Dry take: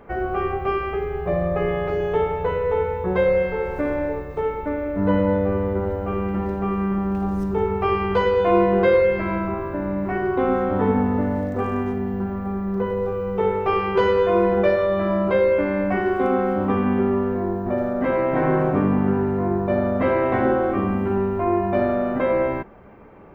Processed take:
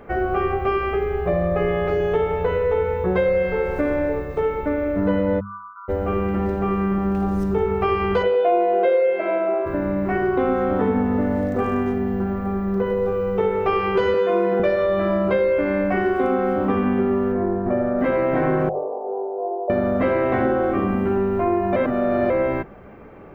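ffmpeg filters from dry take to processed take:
ffmpeg -i in.wav -filter_complex "[0:a]asplit=3[link_01][link_02][link_03];[link_01]afade=type=out:start_time=5.39:duration=0.02[link_04];[link_02]asuperpass=centerf=1200:order=20:qfactor=2.5,afade=type=in:start_time=5.39:duration=0.02,afade=type=out:start_time=5.88:duration=0.02[link_05];[link_03]afade=type=in:start_time=5.88:duration=0.02[link_06];[link_04][link_05][link_06]amix=inputs=3:normalize=0,asplit=3[link_07][link_08][link_09];[link_07]afade=type=out:start_time=8.22:duration=0.02[link_10];[link_08]highpass=frequency=330:width=0.5412,highpass=frequency=330:width=1.3066,equalizer=frequency=660:width_type=q:width=4:gain=10,equalizer=frequency=1100:width_type=q:width=4:gain=-8,equalizer=frequency=1800:width_type=q:width=4:gain=-7,lowpass=frequency=3600:width=0.5412,lowpass=frequency=3600:width=1.3066,afade=type=in:start_time=8.22:duration=0.02,afade=type=out:start_time=9.65:duration=0.02[link_11];[link_09]afade=type=in:start_time=9.65:duration=0.02[link_12];[link_10][link_11][link_12]amix=inputs=3:normalize=0,asettb=1/sr,asplit=3[link_13][link_14][link_15];[link_13]atrim=end=14.144[link_16];[link_14]atrim=start=14.14:end=14.6,asetpts=PTS-STARTPTS,afade=type=in:duration=0.004:curve=qsin,afade=type=out:start_time=0.456:duration=0.004:curve=qsin,highpass=frequency=170:width=0.5412,highpass=frequency=170:width=1.3066[link_17];[link_15]atrim=start=14.596[link_18];[link_16][link_17]acrossfade=duration=0.004:curve1=hsin:curve2=qsin[link_19];[link_19][link_18]acrossfade=duration=0.004:curve1=qsin:curve2=hsin,asettb=1/sr,asplit=3[link_20][link_21][link_22];[link_20]atrim=end=17.324[link_23];[link_21]atrim=start=17.32:end=17.99,asetpts=PTS-STARTPTS,afade=type=in:duration=0.004:curve=qsin,afade=type=out:start_time=0.666:duration=0.004:curve=qsin,lowpass=2400[link_24];[link_22]atrim=start=17.986[link_25];[link_23][link_24]acrossfade=duration=0.004:curve1=hsin:curve2=qsin[link_26];[link_26][link_25]acrossfade=duration=0.004:curve1=qsin:curve2=hsin,asettb=1/sr,asplit=3[link_27][link_28][link_29];[link_27]atrim=end=18.694[link_30];[link_28]atrim=start=18.69:end=19.7,asetpts=PTS-STARTPTS,afade=type=in:duration=0.004:curve=qsin,afade=type=out:start_time=1.006:duration=0.004:curve=qsin,asuperpass=centerf=610:order=8:qfactor=1.3[link_31];[link_29]atrim=start=19.696[link_32];[link_30][link_31]acrossfade=duration=0.004:curve1=hsin:curve2=qsin[link_33];[link_33][link_32]acrossfade=duration=0.004:curve1=qsin:curve2=hsin,asplit=3[link_34][link_35][link_36];[link_34]atrim=end=21.762[link_37];[link_35]atrim=start=21.758:end=22.302,asetpts=PTS-STARTPTS,areverse[link_38];[link_36]atrim=start=22.298[link_39];[link_37][link_38]acrossfade=duration=0.004:curve1=hsin:curve2=hsin[link_40];[link_40][link_39]acrossfade=duration=0.004:curve1=hsin:curve2=hsin,equalizer=frequency=940:width=6.1:gain=-6,bandreject=frequency=50:width_type=h:width=6,bandreject=frequency=100:width_type=h:width=6,bandreject=frequency=150:width_type=h:width=6,bandreject=frequency=200:width_type=h:width=6,acompressor=threshold=-21dB:ratio=3,volume=4dB" out.wav

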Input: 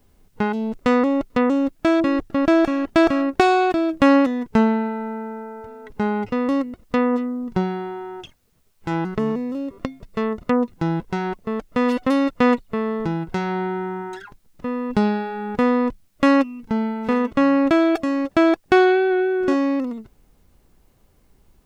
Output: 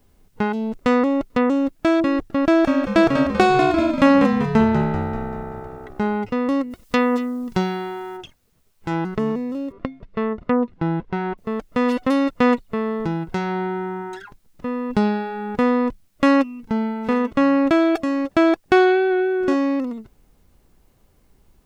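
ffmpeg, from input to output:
ffmpeg -i in.wav -filter_complex "[0:a]asettb=1/sr,asplit=3[link_01][link_02][link_03];[link_01]atrim=end=2.474[link_04];[link_02]atrim=start=2.47:end=6.17,asetpts=PTS-STARTPTS,afade=type=in:duration=0.004:curve=qsin,afade=type=out:start_time=3.696:duration=0.004:curve=qsin,asplit=7[link_05][link_06][link_07][link_08][link_09][link_10][link_11];[link_06]adelay=194,afreqshift=-65,volume=-7dB[link_12];[link_07]adelay=388,afreqshift=-130,volume=-12.5dB[link_13];[link_08]adelay=582,afreqshift=-195,volume=-18dB[link_14];[link_09]adelay=776,afreqshift=-260,volume=-23.5dB[link_15];[link_10]adelay=970,afreqshift=-325,volume=-29.1dB[link_16];[link_11]adelay=1164,afreqshift=-390,volume=-34.6dB[link_17];[link_05][link_12][link_13][link_14][link_15][link_16][link_17]amix=inputs=7:normalize=0,atrim=end_sample=163170[link_18];[link_03]atrim=start=6.166[link_19];[link_04][link_18]acrossfade=duration=0.004:curve1=hsin:curve2=qsin[link_20];[link_20][link_19]acrossfade=duration=0.004:curve1=qsin:curve2=hsin,asplit=3[link_21][link_22][link_23];[link_21]afade=type=out:start_time=6.7:duration=0.02[link_24];[link_22]highshelf=frequency=2200:gain=12,afade=type=in:start_time=6.7:duration=0.02,afade=type=out:start_time=8.16:duration=0.02[link_25];[link_23]afade=type=in:start_time=8.16:duration=0.02[link_26];[link_24][link_25][link_26]amix=inputs=3:normalize=0,asettb=1/sr,asplit=3[link_27][link_28][link_29];[link_27]atrim=end=9.724[link_30];[link_28]atrim=start=9.72:end=11.38,asetpts=PTS-STARTPTS,afade=type=in:duration=0.004:curve=qsin,afade=type=out:start_time=1.656:duration=0.004:curve=qsin,lowpass=2900[link_31];[link_29]atrim=start=11.376[link_32];[link_30][link_31]acrossfade=duration=0.004:curve1=hsin:curve2=qsin[link_33];[link_33][link_32]acrossfade=duration=0.004:curve1=qsin:curve2=hsin" out.wav

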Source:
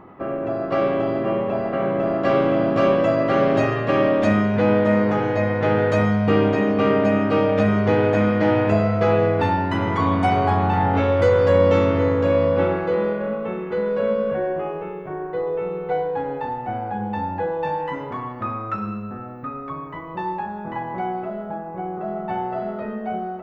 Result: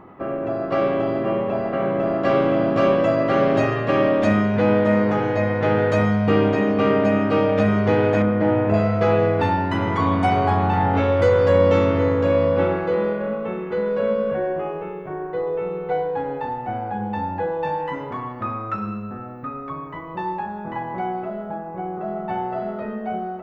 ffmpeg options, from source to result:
ffmpeg -i in.wav -filter_complex "[0:a]asettb=1/sr,asplit=3[link_01][link_02][link_03];[link_01]atrim=end=8.224[link_04];[link_02]atrim=start=8.22:end=8.74,asetpts=PTS-STARTPTS,afade=type=in:duration=0.004:curve=qsin,afade=type=out:start_time=0.516:duration=0.004:curve=qsin,lowpass=frequency=1200:poles=1[link_05];[link_03]atrim=start=8.736[link_06];[link_04][link_05]acrossfade=duration=0.004:curve1=hsin:curve2=qsin[link_07];[link_07][link_06]acrossfade=duration=0.004:curve1=qsin:curve2=hsin" out.wav

